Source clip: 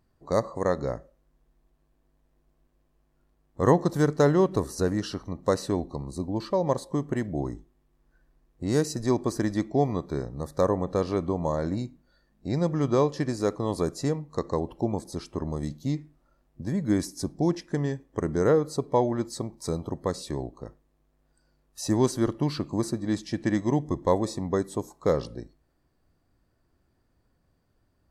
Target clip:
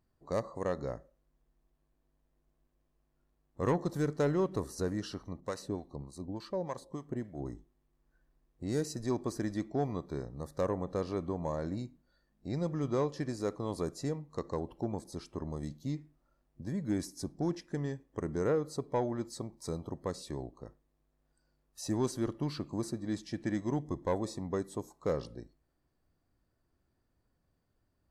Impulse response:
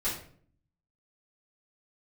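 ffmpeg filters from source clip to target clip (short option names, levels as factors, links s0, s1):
-filter_complex "[0:a]asoftclip=type=tanh:threshold=0.224,asettb=1/sr,asplit=3[s0][s1][s2];[s0]atrim=end=5.404[s3];[s1]atrim=start=5.4:end=7.46,asetpts=PTS-STARTPTS,afade=t=in:d=0.004:c=qsin,afade=t=out:st=2.056:d=0.004:c=qsin,acrossover=split=740[s4][s5];[s4]aeval=exprs='val(0)*(1-0.7/2+0.7/2*cos(2*PI*3.4*n/s))':c=same[s6];[s5]aeval=exprs='val(0)*(1-0.7/2-0.7/2*cos(2*PI*3.4*n/s))':c=same[s7];[s6][s7]amix=inputs=2:normalize=0[s8];[s2]atrim=start=7.456[s9];[s3][s8]acrossfade=d=0.004:c1=hsin:c2=qsin[s10];[s10][s9]acrossfade=d=0.004:c1=qsin:c2=hsin,volume=0.422"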